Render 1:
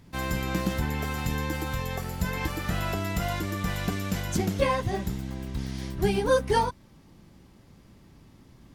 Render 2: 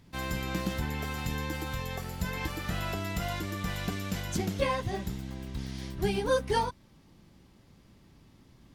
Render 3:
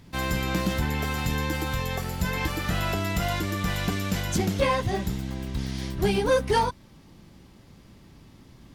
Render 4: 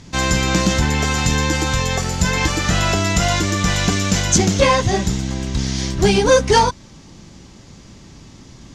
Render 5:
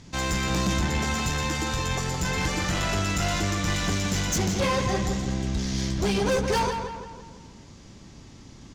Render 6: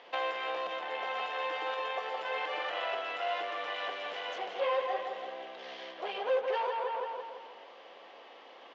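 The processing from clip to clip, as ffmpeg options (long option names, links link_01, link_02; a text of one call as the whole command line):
ffmpeg -i in.wav -af "equalizer=frequency=3600:width_type=o:width=1.4:gain=3,volume=-4.5dB" out.wav
ffmpeg -i in.wav -af "asoftclip=type=tanh:threshold=-21dB,volume=7dB" out.wav
ffmpeg -i in.wav -af "lowpass=frequency=6600:width_type=q:width=3.3,volume=9dB" out.wav
ffmpeg -i in.wav -filter_complex "[0:a]asoftclip=type=tanh:threshold=-15dB,asplit=2[link_01][link_02];[link_02]adelay=167,lowpass=frequency=3500:poles=1,volume=-6dB,asplit=2[link_03][link_04];[link_04]adelay=167,lowpass=frequency=3500:poles=1,volume=0.51,asplit=2[link_05][link_06];[link_06]adelay=167,lowpass=frequency=3500:poles=1,volume=0.51,asplit=2[link_07][link_08];[link_08]adelay=167,lowpass=frequency=3500:poles=1,volume=0.51,asplit=2[link_09][link_10];[link_10]adelay=167,lowpass=frequency=3500:poles=1,volume=0.51,asplit=2[link_11][link_12];[link_12]adelay=167,lowpass=frequency=3500:poles=1,volume=0.51[link_13];[link_03][link_05][link_07][link_09][link_11][link_13]amix=inputs=6:normalize=0[link_14];[link_01][link_14]amix=inputs=2:normalize=0,volume=-6.5dB" out.wav
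ffmpeg -i in.wav -af "acompressor=threshold=-33dB:ratio=10,highpass=frequency=470:width=0.5412,highpass=frequency=470:width=1.3066,equalizer=frequency=510:width_type=q:width=4:gain=10,equalizer=frequency=730:width_type=q:width=4:gain=9,equalizer=frequency=1100:width_type=q:width=4:gain=5,equalizer=frequency=1800:width_type=q:width=4:gain=3,equalizer=frequency=3000:width_type=q:width=4:gain=7,lowpass=frequency=3300:width=0.5412,lowpass=frequency=3300:width=1.3066" out.wav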